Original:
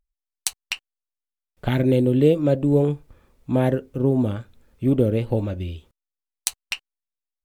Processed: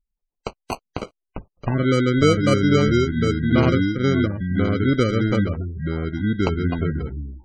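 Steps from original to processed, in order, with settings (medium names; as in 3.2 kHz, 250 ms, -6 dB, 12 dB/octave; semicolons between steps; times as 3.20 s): ever faster or slower copies 112 ms, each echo -4 st, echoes 2; sample-and-hold 25×; spectral gate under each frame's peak -25 dB strong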